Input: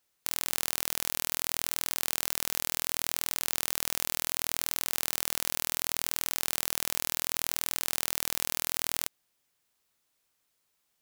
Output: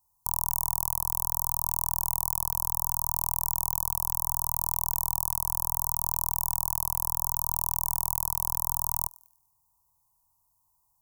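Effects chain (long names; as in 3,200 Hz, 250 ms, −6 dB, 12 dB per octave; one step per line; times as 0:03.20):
drawn EQ curve 120 Hz 0 dB, 210 Hz −11 dB, 500 Hz −20 dB, 960 Hz +9 dB, 1,400 Hz −1 dB, 2,000 Hz +13 dB, 2,900 Hz −27 dB, 6,600 Hz −6 dB, 14,000 Hz +1 dB
in parallel at 0 dB: asymmetric clip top −13.5 dBFS, bottom −11 dBFS
on the sum: elliptic band-stop filter 1,000–4,100 Hz, stop band 40 dB
low-shelf EQ 130 Hz +10 dB
feedback echo with a high-pass in the loop 98 ms, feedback 40%, high-pass 1,000 Hz, level −22 dB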